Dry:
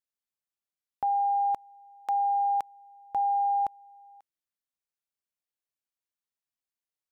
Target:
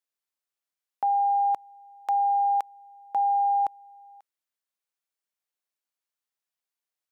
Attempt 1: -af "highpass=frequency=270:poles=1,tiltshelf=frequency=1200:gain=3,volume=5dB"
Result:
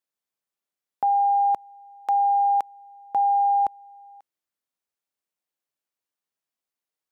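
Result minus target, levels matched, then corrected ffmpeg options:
250 Hz band +4.5 dB
-af "highpass=frequency=880:poles=1,tiltshelf=frequency=1200:gain=3,volume=5dB"

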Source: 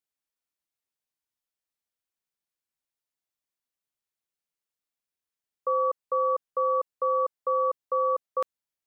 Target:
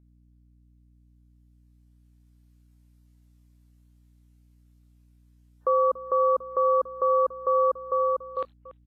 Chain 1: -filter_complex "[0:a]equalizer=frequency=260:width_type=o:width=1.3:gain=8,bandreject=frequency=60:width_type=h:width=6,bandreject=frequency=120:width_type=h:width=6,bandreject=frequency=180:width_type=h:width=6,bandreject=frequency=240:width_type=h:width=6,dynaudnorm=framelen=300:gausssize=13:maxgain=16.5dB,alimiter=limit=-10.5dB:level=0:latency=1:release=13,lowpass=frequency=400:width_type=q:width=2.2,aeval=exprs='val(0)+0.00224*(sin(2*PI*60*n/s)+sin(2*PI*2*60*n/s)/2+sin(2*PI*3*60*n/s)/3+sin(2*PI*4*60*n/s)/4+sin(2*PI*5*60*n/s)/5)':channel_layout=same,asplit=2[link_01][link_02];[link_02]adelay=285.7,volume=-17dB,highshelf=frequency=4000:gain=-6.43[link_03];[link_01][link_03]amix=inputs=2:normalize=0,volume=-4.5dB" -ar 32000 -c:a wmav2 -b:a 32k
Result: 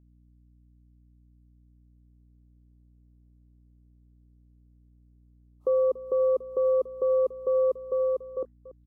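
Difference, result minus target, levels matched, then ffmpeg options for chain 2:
500 Hz band +2.5 dB
-filter_complex "[0:a]equalizer=frequency=260:width_type=o:width=1.3:gain=8,bandreject=frequency=60:width_type=h:width=6,bandreject=frequency=120:width_type=h:width=6,bandreject=frequency=180:width_type=h:width=6,bandreject=frequency=240:width_type=h:width=6,dynaudnorm=framelen=300:gausssize=13:maxgain=16.5dB,alimiter=limit=-10.5dB:level=0:latency=1:release=13,aeval=exprs='val(0)+0.00224*(sin(2*PI*60*n/s)+sin(2*PI*2*60*n/s)/2+sin(2*PI*3*60*n/s)/3+sin(2*PI*4*60*n/s)/4+sin(2*PI*5*60*n/s)/5)':channel_layout=same,asplit=2[link_01][link_02];[link_02]adelay=285.7,volume=-17dB,highshelf=frequency=4000:gain=-6.43[link_03];[link_01][link_03]amix=inputs=2:normalize=0,volume=-4.5dB" -ar 32000 -c:a wmav2 -b:a 32k

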